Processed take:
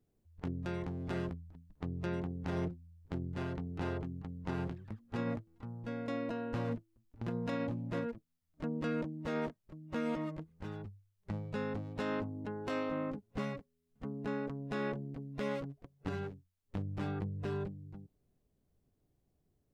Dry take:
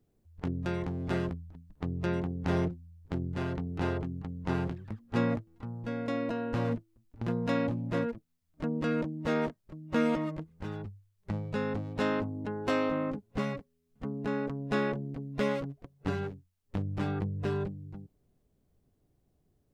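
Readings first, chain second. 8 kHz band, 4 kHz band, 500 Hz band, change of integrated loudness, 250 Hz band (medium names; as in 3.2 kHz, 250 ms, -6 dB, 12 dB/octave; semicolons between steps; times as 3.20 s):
no reading, -6.5 dB, -6.0 dB, -6.0 dB, -6.0 dB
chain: peak limiter -21.5 dBFS, peak gain reduction 6.5 dB; trim -5 dB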